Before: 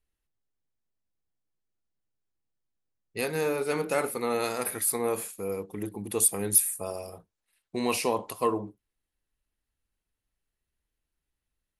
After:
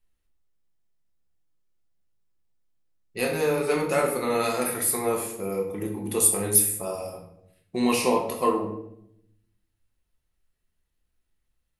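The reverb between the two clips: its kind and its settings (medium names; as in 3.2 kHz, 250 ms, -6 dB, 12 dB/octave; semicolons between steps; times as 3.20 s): simulated room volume 180 m³, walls mixed, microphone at 0.94 m; trim +1 dB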